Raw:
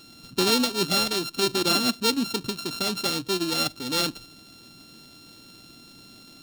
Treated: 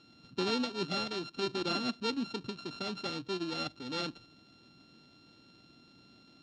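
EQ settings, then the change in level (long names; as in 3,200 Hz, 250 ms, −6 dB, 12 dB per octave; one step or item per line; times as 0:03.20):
high-pass filter 53 Hz
low-pass filter 7,800 Hz 12 dB per octave
high-frequency loss of the air 130 metres
−8.5 dB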